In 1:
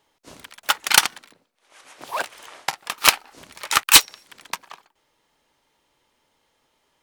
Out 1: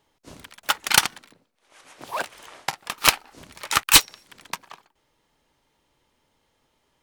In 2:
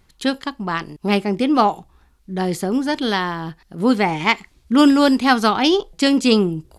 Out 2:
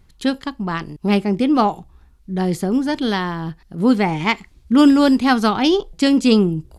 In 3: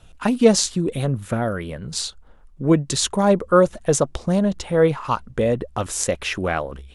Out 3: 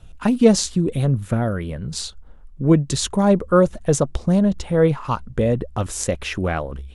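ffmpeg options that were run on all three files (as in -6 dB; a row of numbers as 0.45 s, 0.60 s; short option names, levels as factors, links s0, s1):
-af "lowshelf=f=250:g=9,volume=0.75"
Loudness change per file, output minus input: -2.5 LU, +0.5 LU, +1.0 LU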